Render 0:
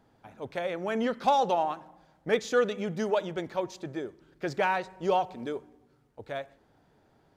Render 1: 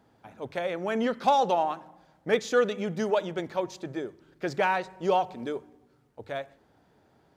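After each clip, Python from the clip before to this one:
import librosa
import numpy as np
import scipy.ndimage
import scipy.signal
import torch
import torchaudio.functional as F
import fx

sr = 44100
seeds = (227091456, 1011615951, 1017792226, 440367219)

y = scipy.signal.sosfilt(scipy.signal.butter(2, 45.0, 'highpass', fs=sr, output='sos'), x)
y = fx.hum_notches(y, sr, base_hz=50, count=3)
y = y * librosa.db_to_amplitude(1.5)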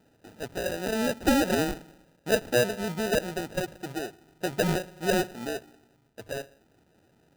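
y = fx.high_shelf(x, sr, hz=4600.0, db=-9.5)
y = fx.sample_hold(y, sr, seeds[0], rate_hz=1100.0, jitter_pct=0)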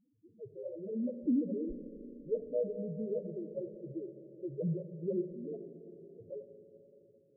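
y = fx.spec_topn(x, sr, count=2)
y = fx.rev_schroeder(y, sr, rt60_s=3.9, comb_ms=29, drr_db=8.5)
y = y * librosa.db_to_amplitude(-4.0)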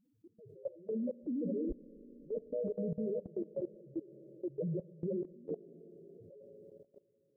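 y = fx.level_steps(x, sr, step_db=20)
y = y * librosa.db_to_amplitude(5.0)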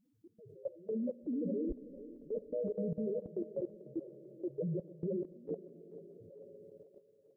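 y = fx.echo_thinned(x, sr, ms=442, feedback_pct=68, hz=320.0, wet_db=-13.5)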